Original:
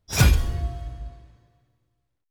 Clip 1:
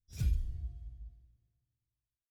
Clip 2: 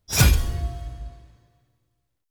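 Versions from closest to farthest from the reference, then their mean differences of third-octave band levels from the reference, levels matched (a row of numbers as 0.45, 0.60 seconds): 2, 1; 1.5, 8.0 decibels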